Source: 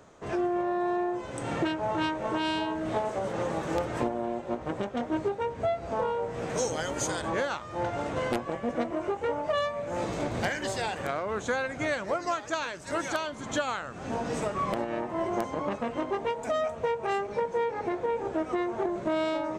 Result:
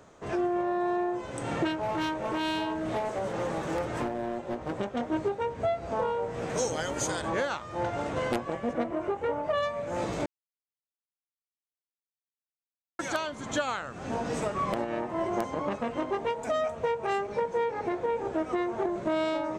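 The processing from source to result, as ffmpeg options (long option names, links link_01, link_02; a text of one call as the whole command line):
ffmpeg -i in.wav -filter_complex "[0:a]asettb=1/sr,asplit=3[link_01][link_02][link_03];[link_01]atrim=end=1.704[link_04];[link_02]atrim=start=1.7:end=4.8,asetpts=PTS-STARTPTS,afade=type=in:duration=0.004:curve=qsin,afade=type=out:start_time=3.096:duration=0.004:curve=qsin,asoftclip=type=hard:threshold=-26dB[link_05];[link_03]atrim=start=4.796[link_06];[link_04][link_05]acrossfade=duration=0.004:curve1=hsin:curve2=qsin[link_07];[link_07][link_06]acrossfade=duration=0.004:curve1=qsin:curve2=hsin,asettb=1/sr,asplit=3[link_08][link_09][link_10];[link_08]atrim=end=8.734[link_11];[link_09]atrim=start=8.73:end=9.63,asetpts=PTS-STARTPTS,afade=type=in:duration=0.004:curve=qsin,afade=type=out:start_time=0.896:duration=0.004:curve=qsin,equalizer=frequency=6600:width_type=o:width=2:gain=-7[link_12];[link_10]atrim=start=9.626[link_13];[link_11][link_12]acrossfade=duration=0.004:curve1=hsin:curve2=qsin[link_14];[link_14][link_13]acrossfade=duration=0.004:curve1=qsin:curve2=hsin,asplit=3[link_15][link_16][link_17];[link_15]atrim=end=10.26,asetpts=PTS-STARTPTS,afade=type=out:start_time=10.256:duration=0.004:curve=hsin[link_18];[link_16]atrim=start=10.26:end=12.99,asetpts=PTS-STARTPTS,volume=0[link_19];[link_17]atrim=start=12.99,asetpts=PTS-STARTPTS,afade=type=in:duration=0.004:curve=hsin[link_20];[link_18][link_19][link_20]concat=n=3:v=0:a=1" out.wav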